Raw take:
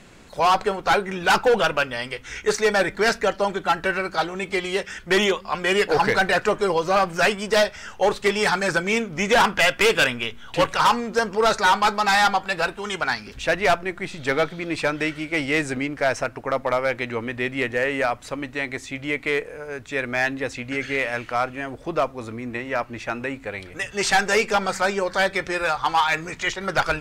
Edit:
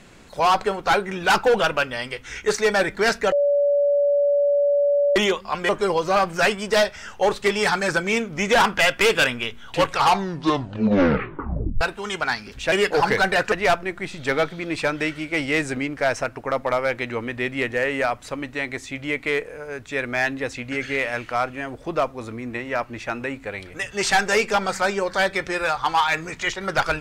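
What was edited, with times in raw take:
3.32–5.16 bleep 573 Hz -15.5 dBFS
5.69–6.49 move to 13.52
10.65 tape stop 1.96 s

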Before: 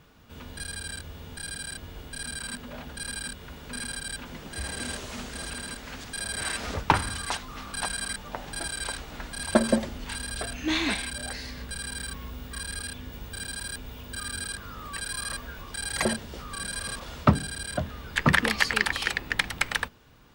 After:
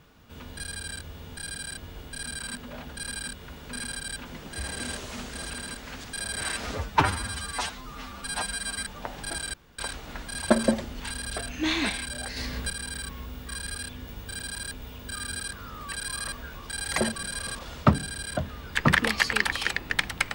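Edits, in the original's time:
6.73–8.14 stretch 1.5×
8.83 insert room tone 0.25 s
11.41–11.75 gain +5.5 dB
16.2–16.56 cut

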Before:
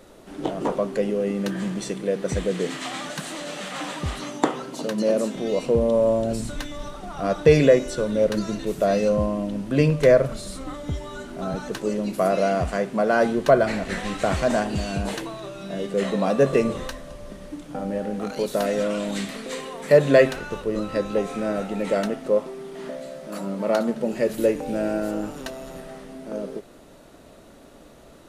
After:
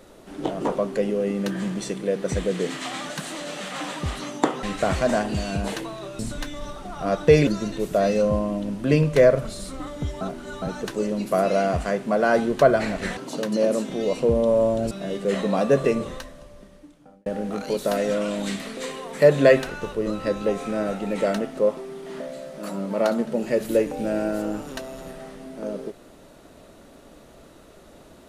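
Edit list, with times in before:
4.63–6.37 swap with 14.04–15.6
7.65–8.34 cut
11.08–11.49 reverse
16.35–17.95 fade out

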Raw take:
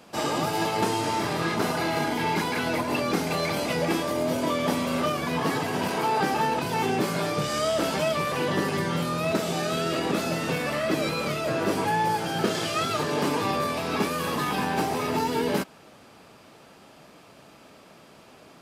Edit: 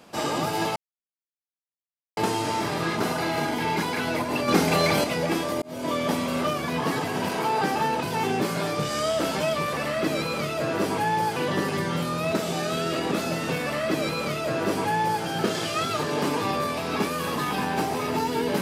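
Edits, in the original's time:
0.76 insert silence 1.41 s
3.07–3.63 gain +5.5 dB
4.21–4.53 fade in
10.64–12.23 copy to 8.36

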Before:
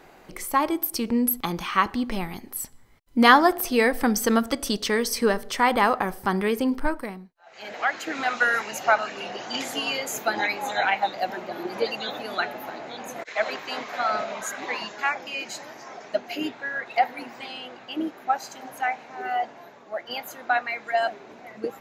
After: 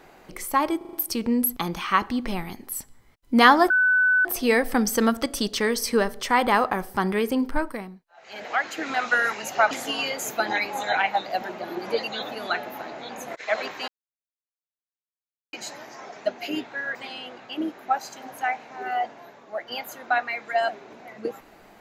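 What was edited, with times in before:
0.77 stutter 0.04 s, 5 plays
3.54 add tone 1500 Hz -16 dBFS 0.55 s
9–9.59 cut
13.76–15.41 mute
16.83–17.34 cut

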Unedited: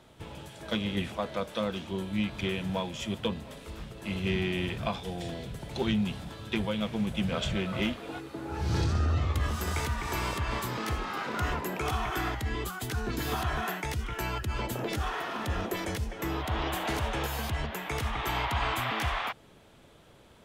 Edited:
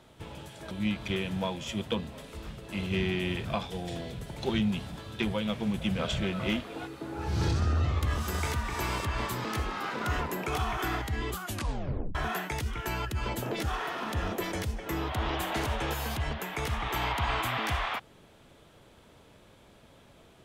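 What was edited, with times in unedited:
0.71–2.04 cut
12.76 tape stop 0.72 s

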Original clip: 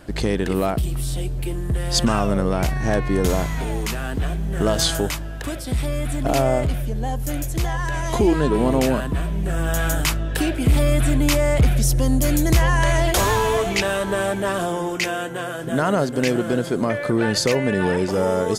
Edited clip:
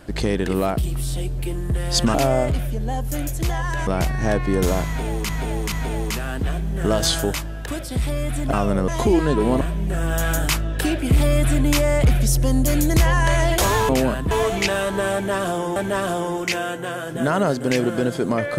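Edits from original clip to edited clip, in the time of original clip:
2.14–2.49 swap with 6.29–8.02
3.48–3.91 loop, 3 plays
8.75–9.17 move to 13.45
14.28–14.9 loop, 2 plays

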